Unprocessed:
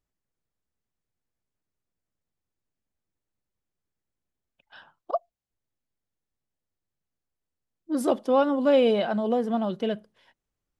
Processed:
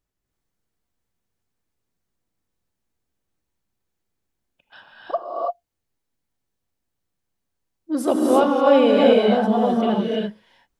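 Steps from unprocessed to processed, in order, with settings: non-linear reverb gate 0.36 s rising, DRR -3 dB; gain +2.5 dB

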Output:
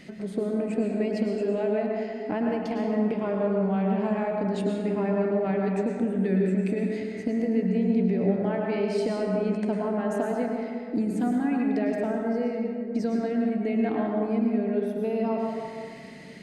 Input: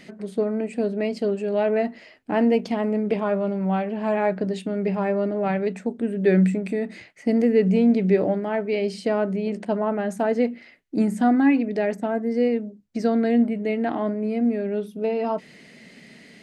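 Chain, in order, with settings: compressor, threshold -25 dBFS, peak gain reduction 11 dB; low shelf 250 Hz +6 dB; plate-style reverb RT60 2 s, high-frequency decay 0.45×, pre-delay 90 ms, DRR -0.5 dB; gain -2.5 dB

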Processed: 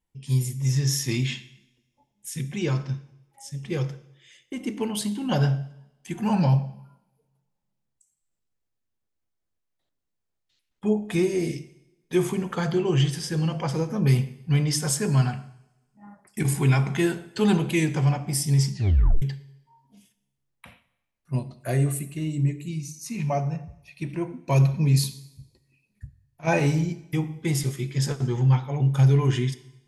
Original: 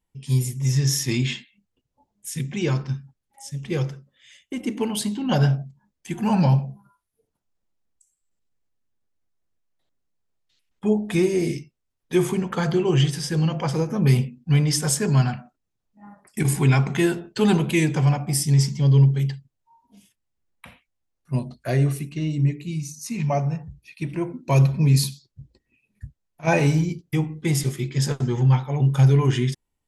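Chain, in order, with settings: 21.6–22.69 resonant high shelf 6600 Hz +6 dB, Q 3; two-slope reverb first 0.8 s, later 2.1 s, from -25 dB, DRR 13 dB; 18.72 tape stop 0.50 s; gain -3 dB

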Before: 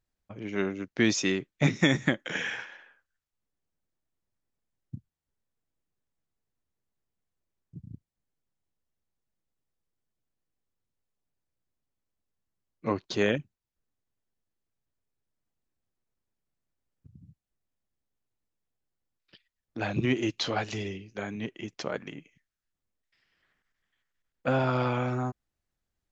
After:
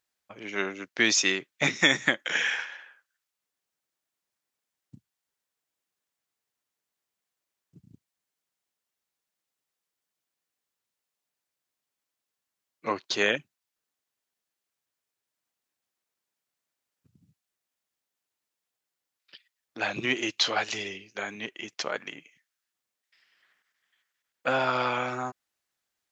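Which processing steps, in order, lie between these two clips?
HPF 1200 Hz 6 dB/oct; gain +7.5 dB

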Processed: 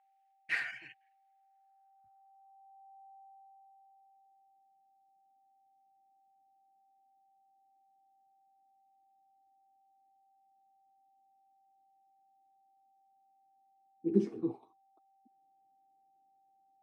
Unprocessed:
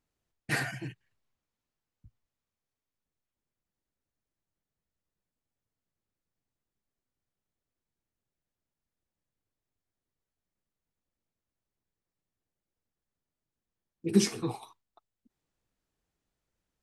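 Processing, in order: whine 780 Hz -55 dBFS; band-pass sweep 2200 Hz -> 310 Hz, 1.11–4.83; gain +1.5 dB

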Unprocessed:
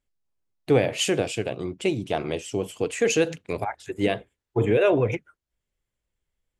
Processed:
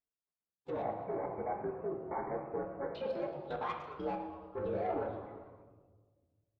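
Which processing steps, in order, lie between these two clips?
inharmonic rescaling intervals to 121%; treble ducked by the level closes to 1200 Hz, closed at -25 dBFS; HPF 320 Hz 6 dB/oct; low-pass opened by the level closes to 1600 Hz, open at -24.5 dBFS; dynamic EQ 1300 Hz, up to +7 dB, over -44 dBFS, Q 0.9; level quantiser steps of 17 dB; soft clip -29 dBFS, distortion -18 dB; 0.82–2.95 brick-wall FIR low-pass 2300 Hz; frequency-shifting echo 0.11 s, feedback 55%, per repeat +130 Hz, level -15 dB; reverb RT60 1.4 s, pre-delay 5 ms, DRR 2 dB; gain -2 dB

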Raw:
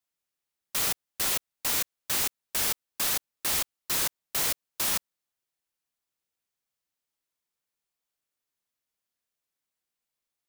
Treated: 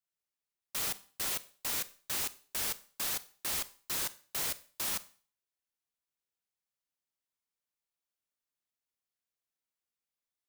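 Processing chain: Schroeder reverb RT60 0.42 s, combs from 31 ms, DRR 16 dB; gain -7 dB

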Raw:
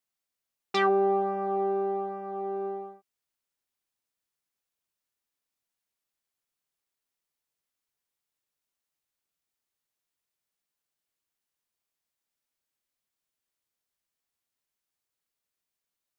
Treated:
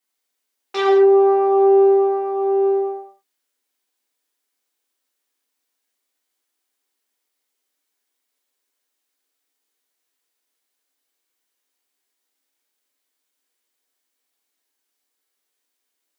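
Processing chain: Chebyshev high-pass 250 Hz, order 5; limiter -21 dBFS, peak gain reduction 6.5 dB; non-linear reverb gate 0.24 s falling, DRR -5.5 dB; gain +3.5 dB

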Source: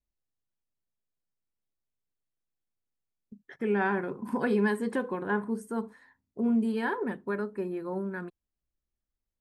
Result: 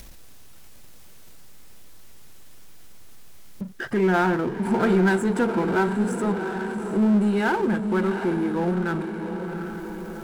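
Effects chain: in parallel at +1 dB: upward compressor, threshold -30 dBFS; on the sum: speed mistake 48 kHz file played as 44.1 kHz; diffused feedback echo 0.746 s, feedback 48%, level -10 dB; power-law curve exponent 0.7; gain -2 dB

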